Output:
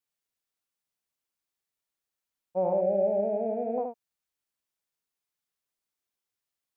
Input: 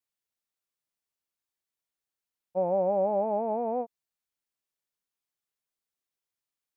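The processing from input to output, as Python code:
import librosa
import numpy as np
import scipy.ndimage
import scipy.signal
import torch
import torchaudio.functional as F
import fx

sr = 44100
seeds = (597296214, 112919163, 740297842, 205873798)

y = fx.cheby1_bandstop(x, sr, low_hz=640.0, high_hz=1700.0, order=2, at=(2.73, 3.78))
y = y + 10.0 ** (-5.0 / 20.0) * np.pad(y, (int(75 * sr / 1000.0), 0))[:len(y)]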